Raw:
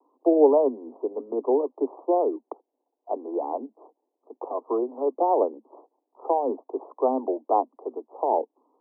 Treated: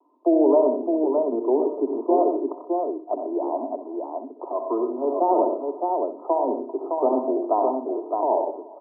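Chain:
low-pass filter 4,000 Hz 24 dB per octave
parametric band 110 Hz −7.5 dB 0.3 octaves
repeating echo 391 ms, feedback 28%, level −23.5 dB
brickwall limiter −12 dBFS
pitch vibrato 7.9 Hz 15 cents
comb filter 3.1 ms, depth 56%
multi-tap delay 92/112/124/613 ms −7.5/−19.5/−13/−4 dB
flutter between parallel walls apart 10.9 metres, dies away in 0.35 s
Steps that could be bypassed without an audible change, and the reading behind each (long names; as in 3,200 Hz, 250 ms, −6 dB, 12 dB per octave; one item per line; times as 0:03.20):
low-pass filter 4,000 Hz: nothing at its input above 1,200 Hz
parametric band 110 Hz: nothing at its input below 210 Hz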